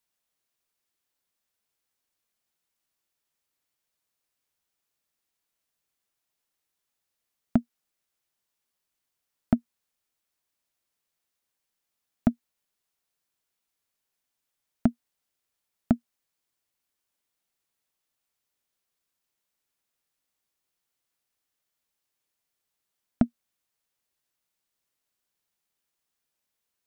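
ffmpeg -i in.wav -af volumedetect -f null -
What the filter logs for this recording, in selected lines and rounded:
mean_volume: -39.3 dB
max_volume: -9.3 dB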